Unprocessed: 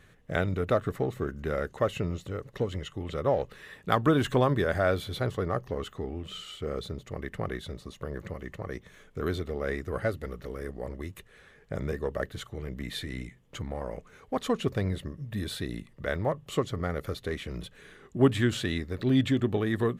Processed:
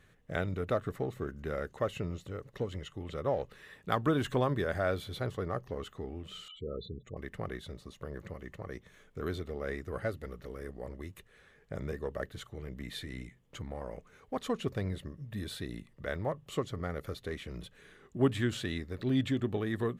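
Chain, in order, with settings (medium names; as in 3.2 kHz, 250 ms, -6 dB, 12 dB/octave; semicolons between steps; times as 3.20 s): 6.48–7.17 s: spectral gate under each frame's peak -15 dB strong; trim -5.5 dB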